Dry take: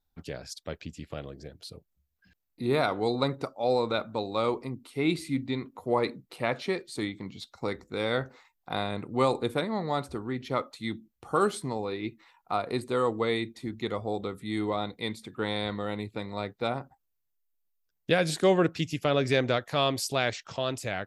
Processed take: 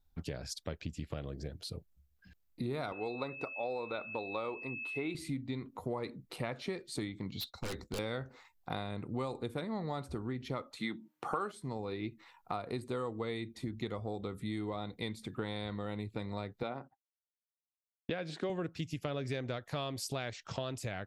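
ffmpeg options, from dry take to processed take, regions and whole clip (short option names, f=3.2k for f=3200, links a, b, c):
-filter_complex "[0:a]asettb=1/sr,asplit=3[a][b][c];[a]atrim=end=2.924[d];[b]atrim=start=2.92:end=5.15,asetpts=PTS-STARTPTS,afade=t=in:d=0.004:c=qsin,afade=t=out:st=2.226:d=0.004:c=qsin,bass=f=250:g=-12,treble=f=4k:g=-11,aeval=exprs='val(0)+0.0126*sin(2*PI*2600*n/s)':c=same[e];[c]atrim=start=5.146[f];[d][e]acrossfade=d=0.004:c1=hsin:c2=qsin[g];[g][f]acrossfade=d=0.004:c1=qsin:c2=hsin,asettb=1/sr,asplit=3[h][i][j];[h]atrim=end=7.314[k];[i]atrim=start=7.31:end=7.99,asetpts=PTS-STARTPTS,afade=t=in:d=0.004:c=qsin,afade=t=out:st=0.676:d=0.004:c=qsin,agate=range=-33dB:threshold=-54dB:ratio=3:release=100:detection=peak,equalizer=f=4k:w=3.1:g=10,aeval=exprs='0.0266*(abs(mod(val(0)/0.0266+3,4)-2)-1)':c=same[l];[j]atrim=start=7.986[m];[k][l]acrossfade=d=0.004:c1=hsin:c2=qsin[n];[n][m]acrossfade=d=0.004:c1=qsin:c2=hsin,asettb=1/sr,asplit=3[o][p][q];[o]atrim=end=10.774[r];[p]atrim=start=10.77:end=11.52,asetpts=PTS-STARTPTS,afade=t=in:d=0.004:c=qsin,afade=t=out:st=0.746:d=0.004:c=qsin,highpass=f=150:w=0.5412,highpass=f=150:w=1.3066,equalizer=f=1.2k:w=0.47:g=11,bandreject=f=306.2:t=h:w=4,bandreject=f=612.4:t=h:w=4,bandreject=f=918.6:t=h:w=4[s];[q]atrim=start=11.516[t];[r][s]acrossfade=d=0.004:c1=hsin:c2=qsin[u];[u][t]acrossfade=d=0.004:c1=qsin:c2=hsin,asettb=1/sr,asplit=3[v][w][x];[v]atrim=end=16.634[y];[w]atrim=start=16.63:end=18.5,asetpts=PTS-STARTPTS,afade=t=in:d=0.004:c=qsin,afade=t=out:st=1.866:d=0.004:c=qsin,highpass=200,lowpass=3.8k,agate=range=-33dB:threshold=-52dB:ratio=3:release=100:detection=peak[z];[x]atrim=start=18.496[aa];[y][z]acrossfade=d=0.004:c1=hsin:c2=qsin[ab];[ab][aa]acrossfade=d=0.004:c1=qsin:c2=hsin,lowshelf=f=160:g=9,acompressor=threshold=-35dB:ratio=6"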